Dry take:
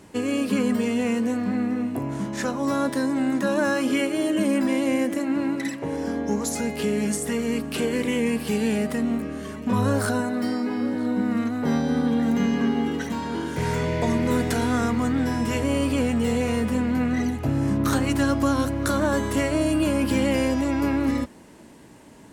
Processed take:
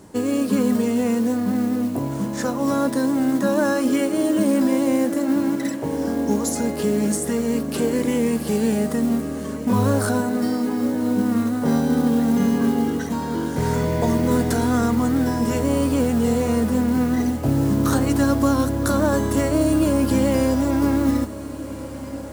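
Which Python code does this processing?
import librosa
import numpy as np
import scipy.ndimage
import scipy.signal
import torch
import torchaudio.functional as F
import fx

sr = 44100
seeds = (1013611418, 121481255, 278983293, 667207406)

p1 = fx.peak_eq(x, sr, hz=2500.0, db=-9.5, octaves=1.1)
p2 = fx.mod_noise(p1, sr, seeds[0], snr_db=24)
p3 = p2 + fx.echo_diffused(p2, sr, ms=1686, feedback_pct=58, wet_db=-15.0, dry=0)
y = p3 * 10.0 ** (3.5 / 20.0)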